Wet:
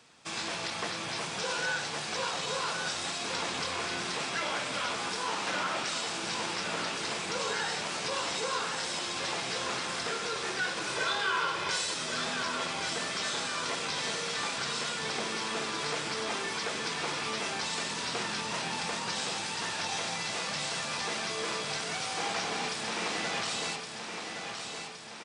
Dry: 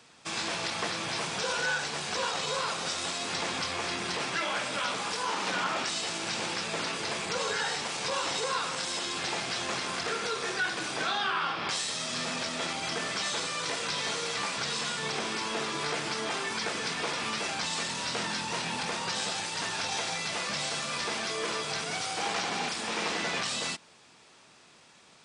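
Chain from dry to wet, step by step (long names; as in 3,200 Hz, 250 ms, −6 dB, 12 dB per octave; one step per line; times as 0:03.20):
0:10.87–0:11.94: comb filter 2 ms, depth 83%
repeating echo 1,117 ms, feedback 58%, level −6.5 dB
level −2.5 dB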